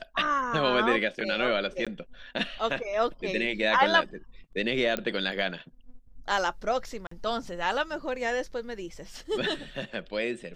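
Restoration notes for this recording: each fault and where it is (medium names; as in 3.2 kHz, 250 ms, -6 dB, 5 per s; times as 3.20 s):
1.85–1.87 s: dropout 16 ms
4.97 s: pop -15 dBFS
7.07–7.11 s: dropout 44 ms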